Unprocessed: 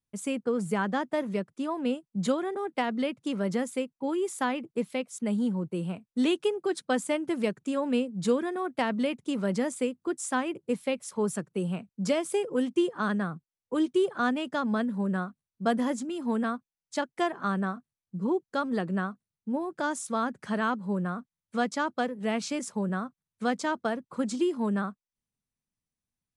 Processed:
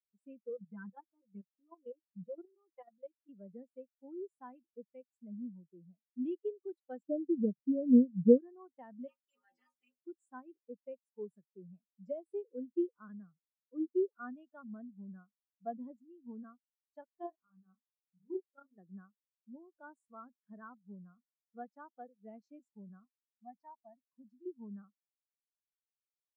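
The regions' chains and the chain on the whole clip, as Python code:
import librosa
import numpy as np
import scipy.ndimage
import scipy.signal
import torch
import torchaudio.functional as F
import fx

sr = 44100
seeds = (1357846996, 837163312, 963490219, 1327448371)

y = fx.chain(x, sr, fx.low_shelf(hz=170.0, db=3.0),
    fx.comb(ms=5.8, depth=0.82),
    fx.level_steps(step_db=13), at=(0.49, 3.29))
y = fx.chain(y, sr, fx.steep_lowpass(hz=640.0, slope=96),
    fx.tilt_eq(slope=-4.0), at=(7.03, 8.38))
y = fx.spec_clip(y, sr, under_db=27, at=(9.07, 9.99), fade=0.02)
y = fx.transient(y, sr, attack_db=-4, sustain_db=5, at=(9.07, 9.99), fade=0.02)
y = fx.stiff_resonator(y, sr, f0_hz=80.0, decay_s=0.29, stiffness=0.008, at=(9.07, 9.99), fade=0.02)
y = fx.chain(y, sr, fx.level_steps(step_db=13),
    fx.low_shelf(hz=92.0, db=10.0),
    fx.doubler(ms=32.0, db=-3.5), at=(17.18, 18.78))
y = fx.chain(y, sr, fx.low_shelf(hz=100.0, db=9.5),
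    fx.fixed_phaser(hz=2100.0, stages=8), at=(23.05, 24.46))
y = fx.low_shelf(y, sr, hz=280.0, db=-5.5)
y = fx.spectral_expand(y, sr, expansion=2.5)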